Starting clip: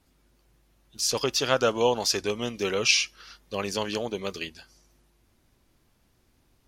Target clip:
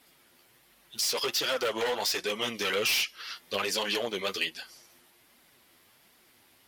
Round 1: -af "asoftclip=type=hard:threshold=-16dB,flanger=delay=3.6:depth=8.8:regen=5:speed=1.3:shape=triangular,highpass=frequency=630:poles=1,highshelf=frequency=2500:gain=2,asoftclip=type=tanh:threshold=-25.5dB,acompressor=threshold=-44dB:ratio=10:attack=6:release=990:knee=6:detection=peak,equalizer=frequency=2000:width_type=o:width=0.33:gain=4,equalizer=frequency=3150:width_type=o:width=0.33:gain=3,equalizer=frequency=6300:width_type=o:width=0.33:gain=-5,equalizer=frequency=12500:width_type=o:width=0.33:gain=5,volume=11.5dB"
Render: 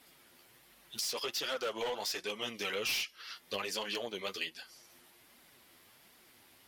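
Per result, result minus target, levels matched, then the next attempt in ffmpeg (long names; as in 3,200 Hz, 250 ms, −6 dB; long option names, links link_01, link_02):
downward compressor: peak gain reduction +8.5 dB; hard clipping: distortion −8 dB
-af "asoftclip=type=hard:threshold=-16dB,flanger=delay=3.6:depth=8.8:regen=5:speed=1.3:shape=triangular,highpass=frequency=630:poles=1,highshelf=frequency=2500:gain=2,asoftclip=type=tanh:threshold=-25.5dB,acompressor=threshold=-35.5dB:ratio=10:attack=6:release=990:knee=6:detection=peak,equalizer=frequency=2000:width_type=o:width=0.33:gain=4,equalizer=frequency=3150:width_type=o:width=0.33:gain=3,equalizer=frequency=6300:width_type=o:width=0.33:gain=-5,equalizer=frequency=12500:width_type=o:width=0.33:gain=5,volume=11.5dB"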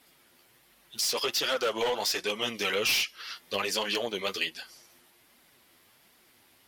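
hard clipping: distortion −8 dB
-af "asoftclip=type=hard:threshold=-23dB,flanger=delay=3.6:depth=8.8:regen=5:speed=1.3:shape=triangular,highpass=frequency=630:poles=1,highshelf=frequency=2500:gain=2,asoftclip=type=tanh:threshold=-25.5dB,acompressor=threshold=-35.5dB:ratio=10:attack=6:release=990:knee=6:detection=peak,equalizer=frequency=2000:width_type=o:width=0.33:gain=4,equalizer=frequency=3150:width_type=o:width=0.33:gain=3,equalizer=frequency=6300:width_type=o:width=0.33:gain=-5,equalizer=frequency=12500:width_type=o:width=0.33:gain=5,volume=11.5dB"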